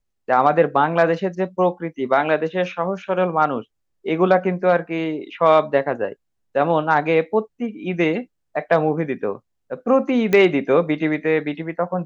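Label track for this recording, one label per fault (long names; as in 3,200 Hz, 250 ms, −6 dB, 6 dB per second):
10.330000	10.330000	click −7 dBFS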